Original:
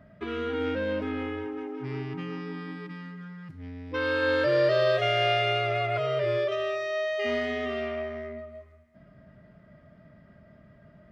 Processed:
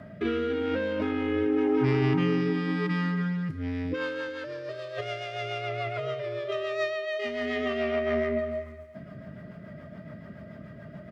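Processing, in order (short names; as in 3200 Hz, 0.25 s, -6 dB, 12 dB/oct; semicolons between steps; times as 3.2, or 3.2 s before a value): self-modulated delay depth 0.061 ms; HPF 91 Hz; negative-ratio compressor -35 dBFS, ratio -1; rotary speaker horn 0.9 Hz, later 7 Hz, at 3.44; on a send: echo 0.356 s -16.5 dB; on the sum: gain +7.5 dB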